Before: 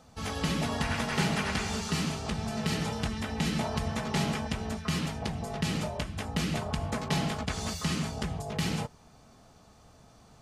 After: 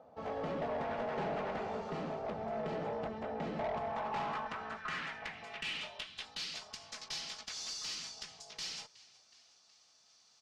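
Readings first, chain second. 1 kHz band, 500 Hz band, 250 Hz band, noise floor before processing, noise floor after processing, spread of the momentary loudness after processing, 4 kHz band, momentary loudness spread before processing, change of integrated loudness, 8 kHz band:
−3.5 dB, −2.0 dB, −14.0 dB, −57 dBFS, −67 dBFS, 8 LU, −6.5 dB, 5 LU, −8.0 dB, −8.5 dB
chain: on a send: echo with shifted repeats 369 ms, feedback 60%, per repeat −47 Hz, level −22.5 dB
on the sum: band-pass filter sweep 590 Hz → 5,300 Hz, 0:03.52–0:06.67
tube saturation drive 39 dB, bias 0.25
high-frequency loss of the air 65 metres
level +7 dB

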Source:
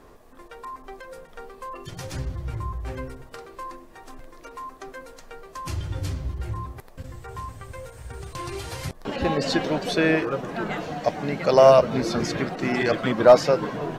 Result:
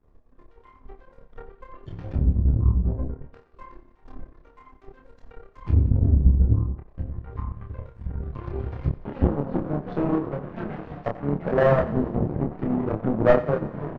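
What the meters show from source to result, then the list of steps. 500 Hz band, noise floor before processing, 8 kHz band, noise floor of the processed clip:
−5.0 dB, −48 dBFS, below −30 dB, −56 dBFS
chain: RIAA equalisation playback
treble cut that deepens with the level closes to 570 Hz, closed at −15.5 dBFS
in parallel at −2.5 dB: brickwall limiter −14.5 dBFS, peak gain reduction 11 dB
on the sum: flanger 0.53 Hz, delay 9.5 ms, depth 6.9 ms, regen −70%
power curve on the samples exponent 2
double-tracking delay 28 ms −4 dB
feedback echo with a high-pass in the loop 89 ms, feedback 63%, high-pass 420 Hz, level −15 dB
highs frequency-modulated by the lows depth 0.33 ms
level +2.5 dB

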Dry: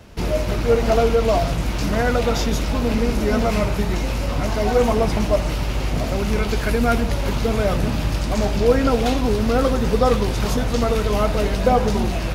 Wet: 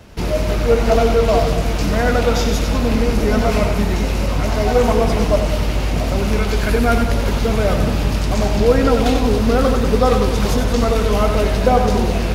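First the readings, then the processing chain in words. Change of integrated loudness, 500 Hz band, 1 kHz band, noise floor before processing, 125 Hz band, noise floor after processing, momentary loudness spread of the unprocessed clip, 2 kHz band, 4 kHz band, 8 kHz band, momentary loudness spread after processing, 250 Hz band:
+3.5 dB, +3.0 dB, +3.0 dB, −24 dBFS, +3.5 dB, −20 dBFS, 5 LU, +3.0 dB, +3.0 dB, +3.0 dB, 5 LU, +3.0 dB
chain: echo with a time of its own for lows and highs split 520 Hz, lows 214 ms, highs 94 ms, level −7 dB
level +2 dB

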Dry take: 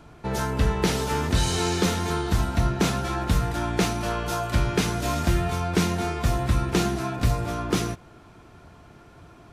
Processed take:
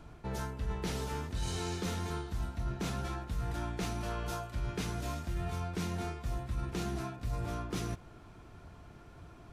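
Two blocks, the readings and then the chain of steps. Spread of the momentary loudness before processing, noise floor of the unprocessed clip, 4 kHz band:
4 LU, −50 dBFS, −14.0 dB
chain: low-shelf EQ 82 Hz +9 dB
reversed playback
downward compressor 6 to 1, threshold −27 dBFS, peak gain reduction 15 dB
reversed playback
level −6 dB

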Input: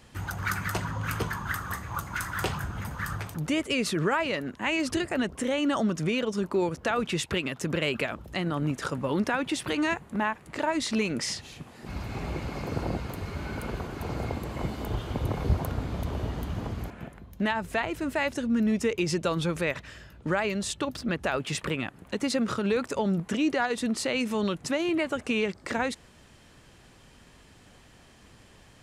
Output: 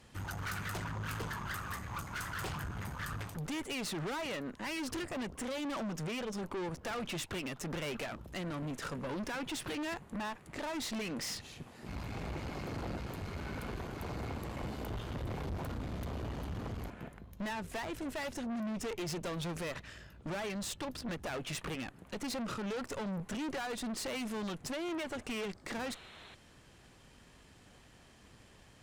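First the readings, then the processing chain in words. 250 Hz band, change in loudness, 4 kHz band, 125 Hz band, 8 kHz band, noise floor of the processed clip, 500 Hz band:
−10.5 dB, −10.0 dB, −8.0 dB, −9.0 dB, −6.5 dB, −60 dBFS, −11.0 dB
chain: tube saturation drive 34 dB, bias 0.65
sound drawn into the spectrogram noise, 0:25.86–0:26.35, 300–4,300 Hz −53 dBFS
level −1.5 dB

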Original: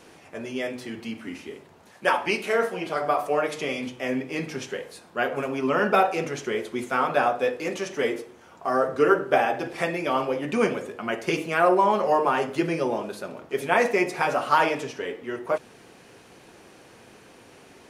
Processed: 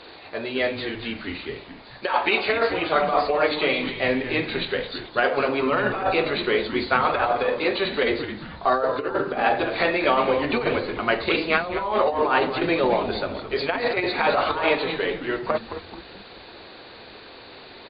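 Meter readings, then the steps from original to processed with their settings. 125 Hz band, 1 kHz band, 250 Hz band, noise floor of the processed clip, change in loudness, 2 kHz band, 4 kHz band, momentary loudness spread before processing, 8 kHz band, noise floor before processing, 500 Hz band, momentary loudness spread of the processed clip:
+1.5 dB, +1.0 dB, +1.5 dB, −44 dBFS, +2.0 dB, +4.0 dB, +8.0 dB, 14 LU, below −35 dB, −52 dBFS, +2.0 dB, 19 LU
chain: hearing-aid frequency compression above 3,400 Hz 4 to 1
compressor whose output falls as the input rises −24 dBFS, ratio −0.5
parametric band 170 Hz −12 dB 1.3 octaves
on a send: echo with shifted repeats 217 ms, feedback 43%, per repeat −140 Hz, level −10.5 dB
on the sum: level +5.5 dB

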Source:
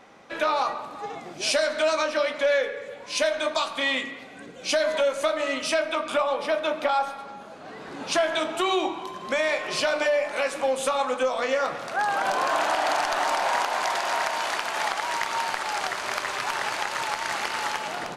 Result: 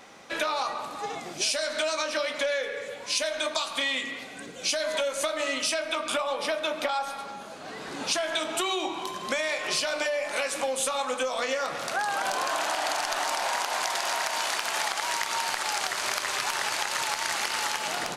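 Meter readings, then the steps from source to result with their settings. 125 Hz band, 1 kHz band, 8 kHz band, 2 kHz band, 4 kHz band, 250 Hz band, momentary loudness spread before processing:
−2.5 dB, −4.0 dB, +4.5 dB, −2.0 dB, +1.0 dB, −4.0 dB, 10 LU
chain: high-shelf EQ 3,300 Hz +11.5 dB
downward compressor, threshold −25 dBFS, peak gain reduction 10.5 dB

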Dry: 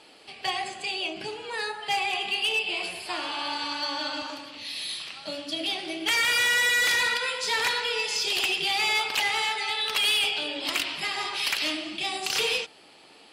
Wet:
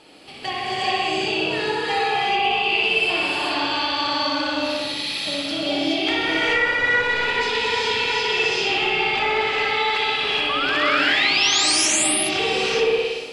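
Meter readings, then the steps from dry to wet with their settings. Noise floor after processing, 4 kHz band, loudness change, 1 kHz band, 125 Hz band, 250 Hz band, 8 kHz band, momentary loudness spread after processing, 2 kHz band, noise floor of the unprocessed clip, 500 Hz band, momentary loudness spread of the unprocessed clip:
−28 dBFS, +4.5 dB, +6.0 dB, +9.0 dB, can't be measured, +12.0 dB, +8.5 dB, 7 LU, +6.0 dB, −53 dBFS, +12.0 dB, 12 LU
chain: on a send: flutter between parallel walls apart 10.3 metres, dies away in 1 s
on the sum: healed spectral selection 0:07.04–0:07.97, 400–2,400 Hz after
low-shelf EQ 400 Hz +8 dB
treble cut that deepens with the level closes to 1,800 Hz, closed at −18.5 dBFS
sound drawn into the spectrogram rise, 0:10.49–0:11.86, 1,100–11,000 Hz −24 dBFS
in parallel at +1.5 dB: brickwall limiter −21.5 dBFS, peak gain reduction 9.5 dB
on the sum: reverb whose tail is shaped and stops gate 450 ms rising, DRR −5 dB
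level −6 dB

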